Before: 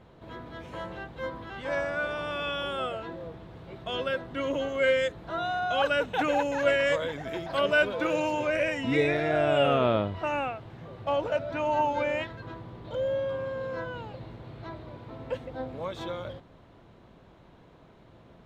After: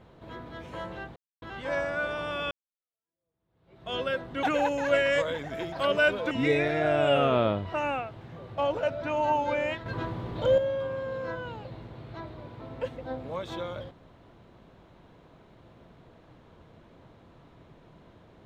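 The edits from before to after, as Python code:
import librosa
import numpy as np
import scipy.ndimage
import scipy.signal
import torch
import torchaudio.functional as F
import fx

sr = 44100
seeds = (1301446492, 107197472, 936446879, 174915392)

y = fx.edit(x, sr, fx.silence(start_s=1.16, length_s=0.26),
    fx.fade_in_span(start_s=2.51, length_s=1.41, curve='exp'),
    fx.cut(start_s=4.43, length_s=1.74),
    fx.cut(start_s=8.05, length_s=0.75),
    fx.clip_gain(start_s=12.35, length_s=0.72, db=8.0), tone=tone)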